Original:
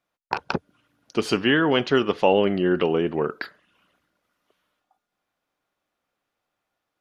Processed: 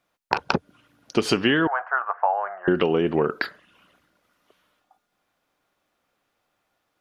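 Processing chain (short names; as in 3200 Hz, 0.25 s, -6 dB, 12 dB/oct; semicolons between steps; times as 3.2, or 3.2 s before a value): 1.67–2.68 elliptic band-pass 690–1600 Hz, stop band 50 dB; compressor 6:1, threshold -23 dBFS, peak gain reduction 8.5 dB; gain +6.5 dB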